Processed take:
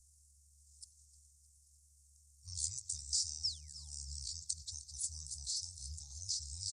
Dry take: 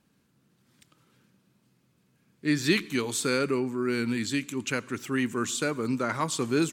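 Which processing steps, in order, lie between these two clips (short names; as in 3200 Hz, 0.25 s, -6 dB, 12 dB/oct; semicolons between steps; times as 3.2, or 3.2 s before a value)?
painted sound fall, 3.44–4.08, 530–9500 Hz -34 dBFS; tilt +3.5 dB/oct; compressor 2:1, threshold -28 dBFS, peak gain reduction 6.5 dB; buzz 120 Hz, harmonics 12, -63 dBFS -1 dB/oct; inverse Chebyshev band-stop 310–4900 Hz, stop band 50 dB; pitch shift -9 st; on a send: feedback echo 0.307 s, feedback 52%, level -16.5 dB; on the sum: gain +4 dB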